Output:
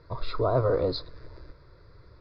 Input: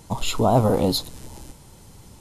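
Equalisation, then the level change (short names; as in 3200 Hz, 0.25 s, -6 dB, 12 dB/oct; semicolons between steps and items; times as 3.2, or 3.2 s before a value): rippled Chebyshev low-pass 4900 Hz, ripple 3 dB; fixed phaser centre 820 Hz, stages 6; 0.0 dB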